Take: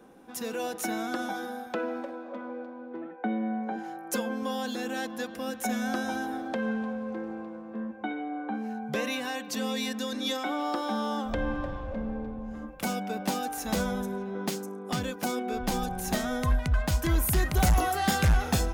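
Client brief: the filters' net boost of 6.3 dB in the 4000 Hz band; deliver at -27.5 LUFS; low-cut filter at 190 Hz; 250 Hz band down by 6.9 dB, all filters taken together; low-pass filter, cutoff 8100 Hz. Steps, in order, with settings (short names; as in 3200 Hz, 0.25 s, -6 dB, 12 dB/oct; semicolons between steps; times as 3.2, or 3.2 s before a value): HPF 190 Hz; LPF 8100 Hz; bell 250 Hz -6.5 dB; bell 4000 Hz +8 dB; gain +5 dB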